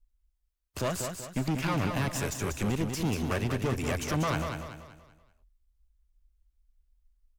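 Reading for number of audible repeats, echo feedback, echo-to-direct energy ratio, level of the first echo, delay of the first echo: 4, 40%, -5.0 dB, -6.0 dB, 0.191 s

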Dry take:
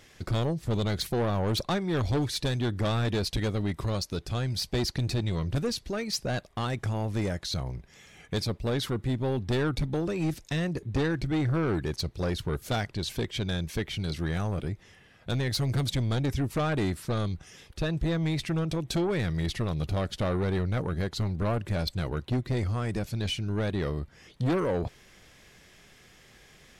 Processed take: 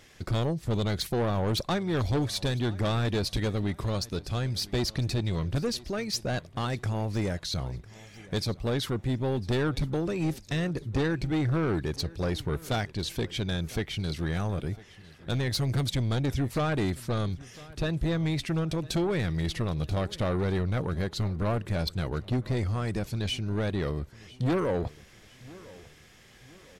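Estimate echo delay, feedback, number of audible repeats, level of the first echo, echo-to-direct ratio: 1.003 s, 39%, 2, -21.0 dB, -20.5 dB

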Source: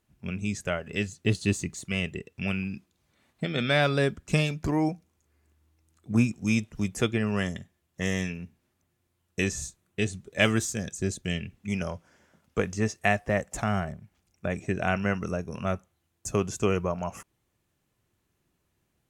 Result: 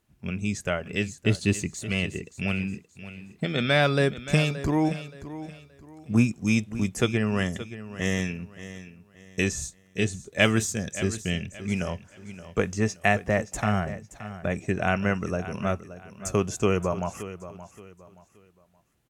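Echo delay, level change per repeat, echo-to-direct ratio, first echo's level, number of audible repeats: 0.574 s, -10.0 dB, -13.5 dB, -14.0 dB, 3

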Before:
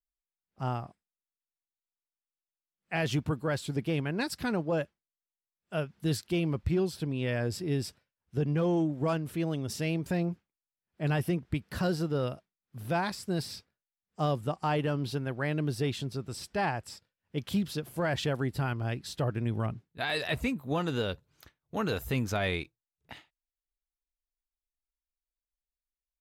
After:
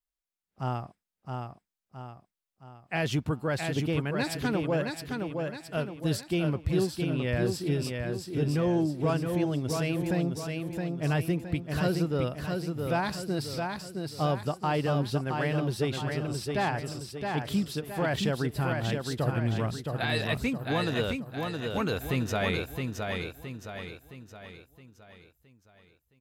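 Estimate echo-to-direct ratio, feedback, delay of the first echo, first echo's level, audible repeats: -3.5 dB, 46%, 0.667 s, -4.5 dB, 5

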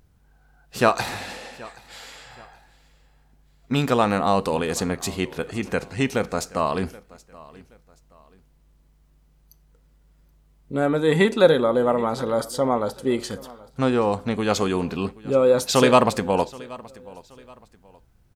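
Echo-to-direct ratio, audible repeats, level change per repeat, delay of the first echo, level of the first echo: -21.0 dB, 2, -9.5 dB, 0.776 s, -21.5 dB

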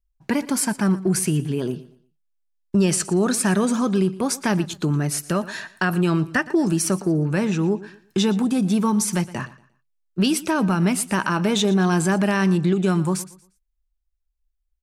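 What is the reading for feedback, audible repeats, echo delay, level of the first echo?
29%, 2, 0.117 s, -18.0 dB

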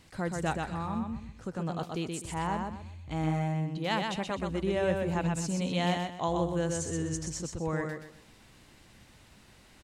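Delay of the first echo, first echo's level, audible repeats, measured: 0.126 s, -4.0 dB, 3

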